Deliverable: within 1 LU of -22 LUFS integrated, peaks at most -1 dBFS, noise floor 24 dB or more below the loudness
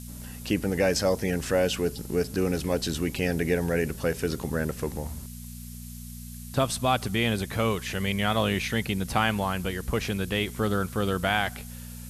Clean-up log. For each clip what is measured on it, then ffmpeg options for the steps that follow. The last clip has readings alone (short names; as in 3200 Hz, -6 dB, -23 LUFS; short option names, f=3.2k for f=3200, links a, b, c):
hum 60 Hz; harmonics up to 240 Hz; hum level -39 dBFS; noise floor -41 dBFS; noise floor target -52 dBFS; loudness -27.5 LUFS; peak -9.5 dBFS; loudness target -22.0 LUFS
-> -af "bandreject=f=60:t=h:w=4,bandreject=f=120:t=h:w=4,bandreject=f=180:t=h:w=4,bandreject=f=240:t=h:w=4"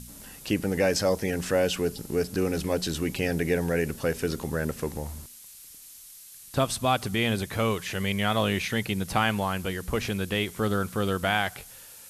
hum none; noise floor -48 dBFS; noise floor target -52 dBFS
-> -af "afftdn=nr=6:nf=-48"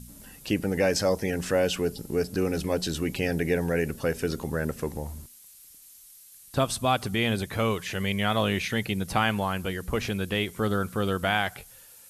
noise floor -51 dBFS; noise floor target -52 dBFS
-> -af "afftdn=nr=6:nf=-51"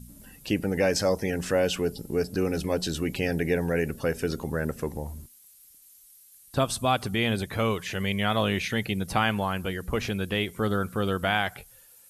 noise floor -55 dBFS; loudness -27.5 LUFS; peak -10.5 dBFS; loudness target -22.0 LUFS
-> -af "volume=5.5dB"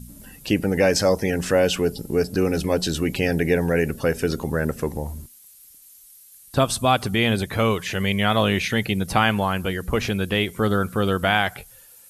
loudness -22.0 LUFS; peak -5.0 dBFS; noise floor -49 dBFS